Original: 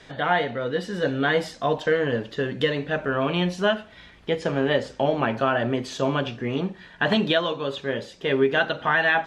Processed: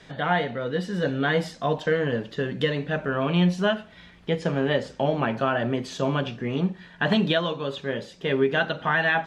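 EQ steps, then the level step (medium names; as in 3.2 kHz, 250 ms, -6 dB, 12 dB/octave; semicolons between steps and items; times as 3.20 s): peaking EQ 170 Hz +8 dB 0.46 oct; -2.0 dB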